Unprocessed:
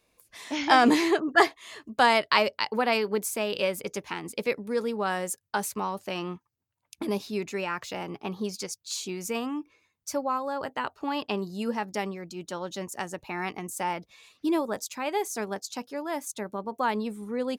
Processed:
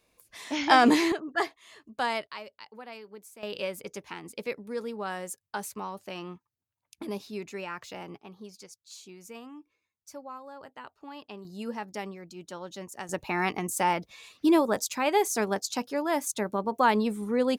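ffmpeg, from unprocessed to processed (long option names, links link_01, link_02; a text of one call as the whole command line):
ffmpeg -i in.wav -af "asetnsamples=nb_out_samples=441:pad=0,asendcmd='1.12 volume volume -8.5dB;2.27 volume volume -19dB;3.43 volume volume -6dB;8.18 volume volume -13.5dB;11.45 volume volume -5.5dB;13.09 volume volume 4.5dB',volume=0dB" out.wav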